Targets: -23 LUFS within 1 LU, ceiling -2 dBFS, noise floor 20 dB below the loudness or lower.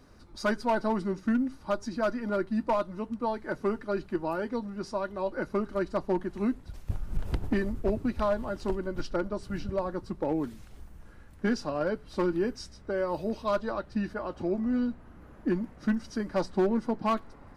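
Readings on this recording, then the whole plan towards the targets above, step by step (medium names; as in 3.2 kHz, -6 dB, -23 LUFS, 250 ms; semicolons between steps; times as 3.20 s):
clipped samples 0.8%; clipping level -20.0 dBFS; loudness -31.5 LUFS; peak level -20.0 dBFS; loudness target -23.0 LUFS
-> clip repair -20 dBFS; trim +8.5 dB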